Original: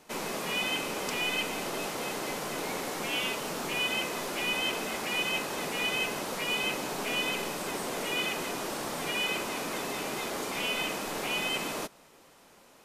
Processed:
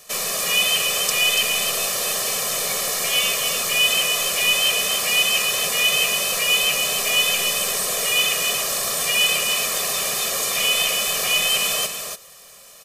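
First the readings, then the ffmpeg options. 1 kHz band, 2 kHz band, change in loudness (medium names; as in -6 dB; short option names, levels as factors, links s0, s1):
+5.0 dB, +10.5 dB, +13.0 dB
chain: -af "equalizer=f=12000:w=1.5:g=-4,aecho=1:1:1.7:0.88,crystalizer=i=5.5:c=0,aecho=1:1:285:0.501"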